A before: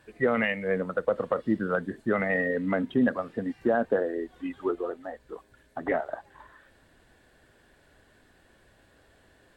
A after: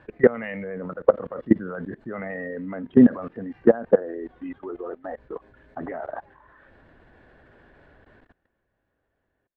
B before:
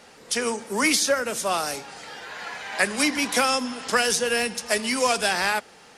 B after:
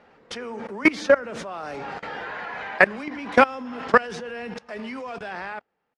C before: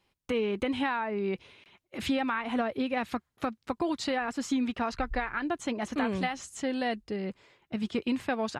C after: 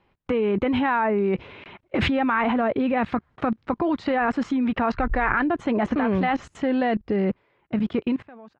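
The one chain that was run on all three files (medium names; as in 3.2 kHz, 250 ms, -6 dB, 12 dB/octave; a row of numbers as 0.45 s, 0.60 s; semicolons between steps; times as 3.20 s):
fade out at the end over 2.19 s; low-pass 1.9 kHz 12 dB/octave; level held to a coarse grid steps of 22 dB; normalise loudness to -24 LUFS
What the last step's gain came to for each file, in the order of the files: +11.5 dB, +10.5 dB, +22.5 dB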